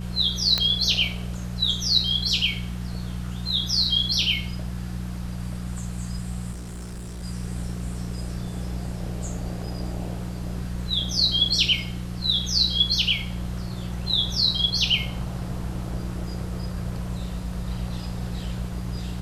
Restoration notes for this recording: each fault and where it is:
hum 60 Hz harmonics 3 -31 dBFS
0.58 s: pop -7 dBFS
6.51–7.24 s: clipped -32 dBFS

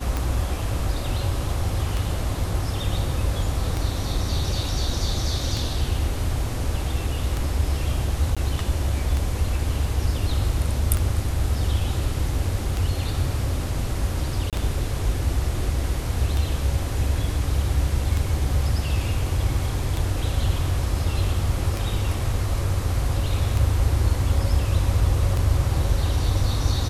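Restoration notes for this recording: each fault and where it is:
tick 33 1/3 rpm
8.35–8.37 s: dropout 16 ms
14.50–14.53 s: dropout 27 ms

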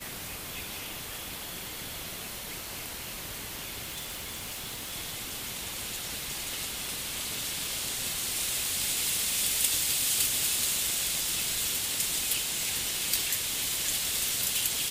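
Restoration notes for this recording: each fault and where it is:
3.84–4.93 s: clipped -33 dBFS

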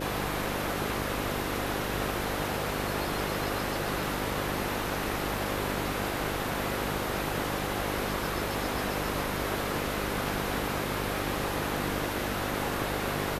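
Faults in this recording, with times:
buzz 50 Hz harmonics 11 -36 dBFS

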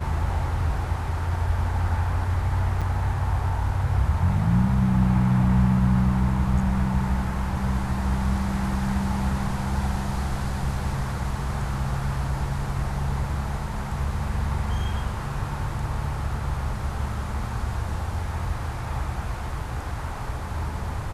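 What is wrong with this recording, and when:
2.81–2.82 s: dropout 6.1 ms

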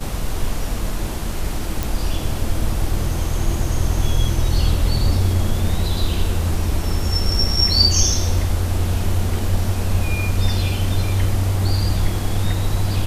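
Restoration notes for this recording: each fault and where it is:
1.83 s: pop

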